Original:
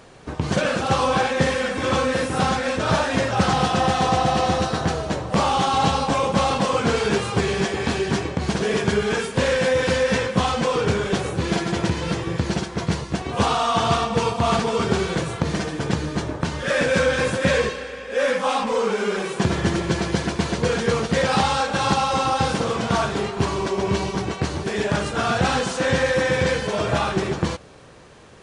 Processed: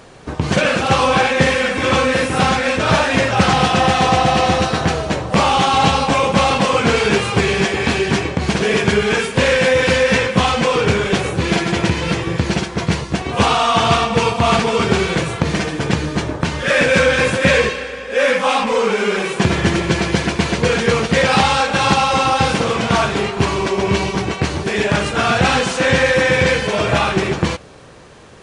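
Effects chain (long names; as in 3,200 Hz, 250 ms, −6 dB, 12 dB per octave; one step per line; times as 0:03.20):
dynamic equaliser 2,400 Hz, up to +6 dB, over −41 dBFS, Q 1.8
level +5 dB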